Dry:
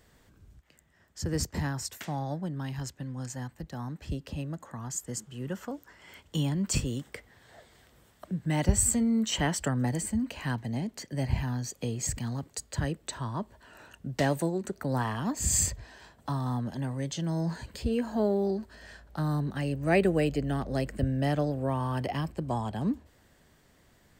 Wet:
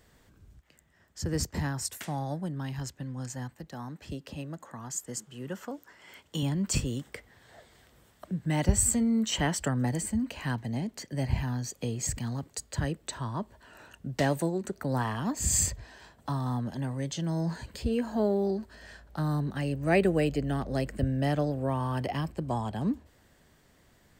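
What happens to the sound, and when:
0:01.81–0:02.52: parametric band 10,000 Hz +10.5 dB 0.47 octaves
0:03.54–0:06.43: high-pass filter 190 Hz 6 dB per octave

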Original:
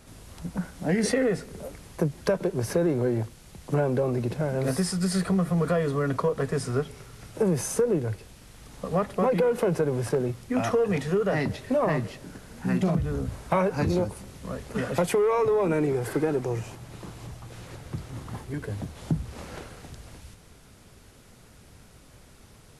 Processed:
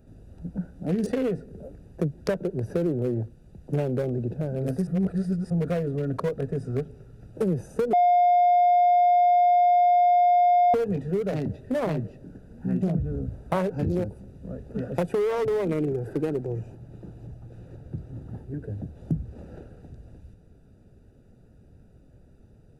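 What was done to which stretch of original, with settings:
0:04.87–0:05.50: reverse
0:07.93–0:10.74: beep over 710 Hz −14.5 dBFS
whole clip: adaptive Wiener filter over 41 samples; high-shelf EQ 5,800 Hz +9.5 dB

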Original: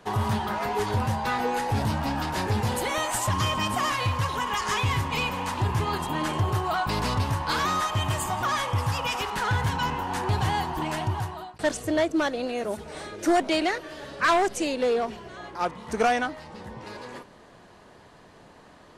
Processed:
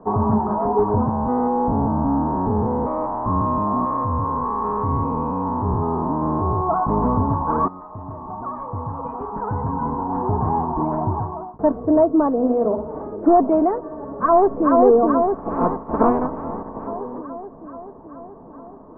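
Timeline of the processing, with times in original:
0:01.09–0:06.69: spectrum averaged block by block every 200 ms
0:07.68–0:11.02: fade in, from −16.5 dB
0:12.35–0:13.03: flutter between parallel walls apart 9.6 metres, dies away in 0.45 s
0:13.99–0:14.78: delay throw 430 ms, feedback 70%, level −2 dB
0:15.33–0:16.86: ceiling on every frequency bin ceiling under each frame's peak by 19 dB
whole clip: elliptic low-pass filter 1,100 Hz, stop band 80 dB; parametric band 280 Hz +6.5 dB 0.47 octaves; comb filter 4.5 ms, depth 37%; level +7.5 dB

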